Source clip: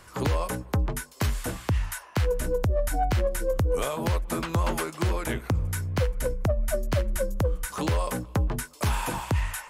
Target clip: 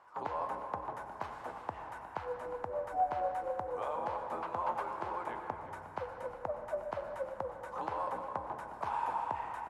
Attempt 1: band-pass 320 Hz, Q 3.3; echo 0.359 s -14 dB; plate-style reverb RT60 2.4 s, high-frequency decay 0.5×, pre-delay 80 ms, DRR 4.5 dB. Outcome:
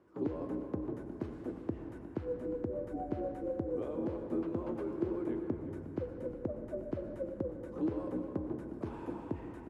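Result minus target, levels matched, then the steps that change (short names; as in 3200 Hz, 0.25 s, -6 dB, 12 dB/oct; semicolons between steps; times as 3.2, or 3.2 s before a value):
250 Hz band +16.0 dB
change: band-pass 870 Hz, Q 3.3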